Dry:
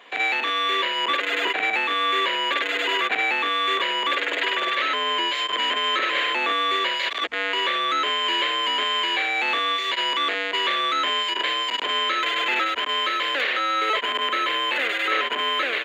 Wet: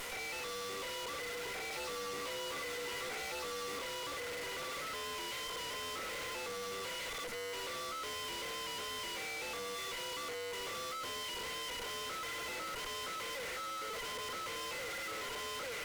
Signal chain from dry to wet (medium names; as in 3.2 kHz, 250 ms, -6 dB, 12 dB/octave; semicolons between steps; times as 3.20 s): one-bit delta coder 64 kbps, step -41 dBFS; treble shelf 5.7 kHz +9 dB; band-stop 1.7 kHz, Q 8.4; small resonant body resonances 490/1400/2000 Hz, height 11 dB; half-wave rectifier; valve stage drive 34 dB, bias 0.55; 1.71–3.79 s: doubling 14 ms -2 dB; level flattener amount 70%; trim +3 dB